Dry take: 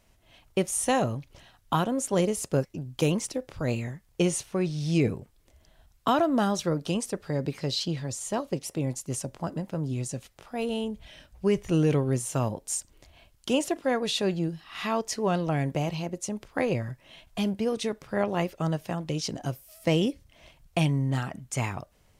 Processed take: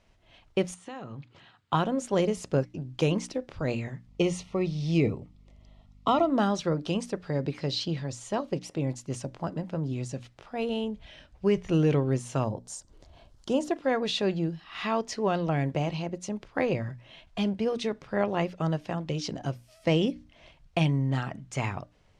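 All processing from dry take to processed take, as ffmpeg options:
-filter_complex "[0:a]asettb=1/sr,asplit=3[a][b][c];[a]atrim=end=0.744[d];[b]atrim=start=0.74:end=1.73,asetpts=PTS-STARTPTS,afade=t=in:d=0.004:c=qsin,afade=t=out:st=0.986:d=0.004:c=qsin,acompressor=threshold=-35dB:ratio=8:attack=3.2:release=140:knee=1:detection=peak,highpass=f=100:w=0.5412,highpass=f=100:w=1.3066,equalizer=f=610:t=q:w=4:g=-7,equalizer=f=1.3k:t=q:w=4:g=4,equalizer=f=5.8k:t=q:w=4:g=-10,lowpass=f=8.2k:w=0.5412,lowpass=f=8.2k:w=1.3066[e];[c]atrim=start=1.726[f];[d][e]acrossfade=d=0.004:c1=hsin:c2=qsin[g];[g][f]acrossfade=d=0.004:c1=qsin:c2=hsin,asettb=1/sr,asplit=3[h][i][j];[h]atrim=end=4.074[k];[i]atrim=start=4.07:end=6.3,asetpts=PTS-STARTPTS,afade=t=in:d=0.004:c=qsin,afade=t=out:st=2.226:d=0.004:c=qsin,highshelf=f=9.2k:g=-5,aeval=exprs='val(0)+0.002*(sin(2*PI*50*n/s)+sin(2*PI*2*50*n/s)/2+sin(2*PI*3*50*n/s)/3+sin(2*PI*4*50*n/s)/4+sin(2*PI*5*50*n/s)/5)':c=same,asuperstop=centerf=1600:order=20:qfactor=4.1[l];[j]atrim=start=6.296[m];[k][l]acrossfade=d=0.004:c1=hsin:c2=qsin[n];[n][m]acrossfade=d=0.004:c1=qsin:c2=hsin,asettb=1/sr,asplit=3[o][p][q];[o]atrim=end=12.444[r];[p]atrim=start=12.44:end=13.71,asetpts=PTS-STARTPTS,afade=t=in:d=0.004:c=qsin,afade=t=out:st=1.266:d=0.004:c=qsin,equalizer=f=2.4k:t=o:w=1.1:g=-12,acompressor=mode=upward:threshold=-45dB:ratio=2.5:attack=3.2:release=140:knee=2.83:detection=peak[s];[q]atrim=start=13.706[t];[r][s]acrossfade=d=0.004:c1=hsin:c2=qsin[u];[u][t]acrossfade=d=0.004:c1=qsin:c2=hsin,lowpass=5k,bandreject=f=60:t=h:w=6,bandreject=f=120:t=h:w=6,bandreject=f=180:t=h:w=6,bandreject=f=240:t=h:w=6,bandreject=f=300:t=h:w=6"

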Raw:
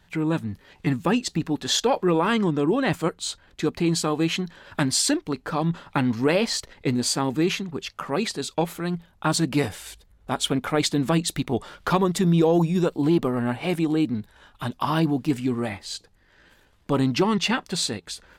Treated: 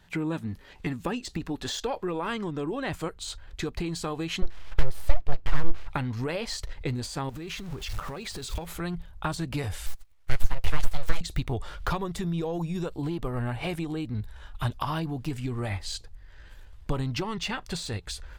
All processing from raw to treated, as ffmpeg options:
-filter_complex "[0:a]asettb=1/sr,asplit=3[a][b][c];[a]atrim=end=4.424[d];[b]atrim=start=4.42:end=5.88,asetpts=PTS-STARTPTS,afade=t=in:d=0.004:c=qsin,afade=t=out:st=1.456:d=0.004:c=qsin,deesser=0.65,equalizer=f=10k:t=o:w=2.1:g=-11.5,aeval=exprs='abs(val(0))':c=same[e];[c]atrim=start=5.876[f];[d][e]acrossfade=d=0.004:c1=hsin:c2=qsin[g];[g][f]acrossfade=d=0.004:c1=qsin:c2=hsin,asettb=1/sr,asplit=3[h][i][j];[h]atrim=end=7.294[k];[i]atrim=start=7.29:end=8.71,asetpts=PTS-STARTPTS,afade=t=in:d=0.004:c=qsin,afade=t=out:st=1.416:d=0.004:c=qsin,aeval=exprs='val(0)+0.5*0.0158*sgn(val(0))':c=same,acompressor=threshold=-33dB:ratio=5:attack=3.2:release=140:knee=1:detection=peak[l];[j]atrim=start=8.706[m];[k][l]acrossfade=d=0.004:c1=hsin:c2=qsin[n];[n][m]acrossfade=d=0.004:c1=qsin:c2=hsin,asettb=1/sr,asplit=3[o][p][q];[o]atrim=end=9.864[r];[p]atrim=start=9.86:end=11.21,asetpts=PTS-STARTPTS,afade=t=in:d=0.004:c=qsin,afade=t=out:st=1.346:d=0.004:c=qsin,highpass=510,aeval=exprs='abs(val(0))':c=same[s];[q]atrim=start=11.206[t];[r][s]acrossfade=d=0.004:c1=hsin:c2=qsin[u];[u][t]acrossfade=d=0.004:c1=qsin:c2=hsin,acompressor=threshold=-26dB:ratio=6,asubboost=boost=11:cutoff=67,deesser=0.7"

